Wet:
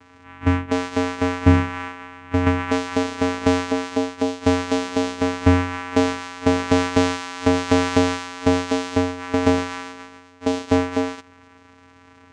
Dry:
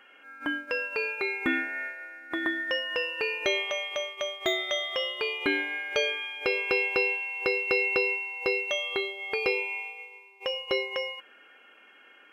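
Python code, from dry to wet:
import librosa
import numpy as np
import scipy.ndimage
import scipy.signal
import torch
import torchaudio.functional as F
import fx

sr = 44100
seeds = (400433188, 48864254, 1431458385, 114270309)

y = fx.vocoder(x, sr, bands=4, carrier='square', carrier_hz=89.7)
y = fx.peak_eq(y, sr, hz=180.0, db=11.5, octaves=1.7)
y = F.gain(torch.from_numpy(y), 5.5).numpy()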